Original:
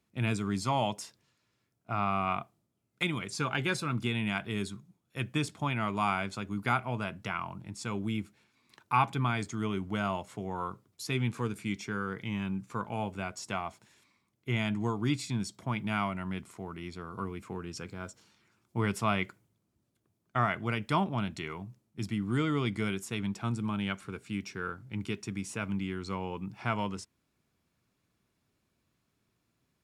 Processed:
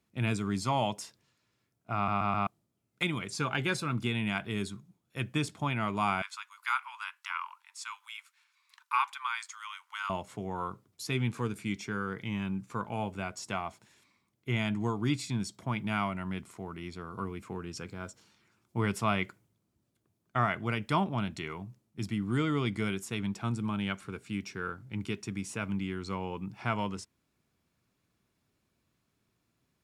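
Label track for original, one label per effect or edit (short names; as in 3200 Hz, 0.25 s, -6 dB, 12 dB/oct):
1.950000	1.950000	stutter in place 0.13 s, 4 plays
6.220000	10.100000	steep high-pass 930 Hz 72 dB/oct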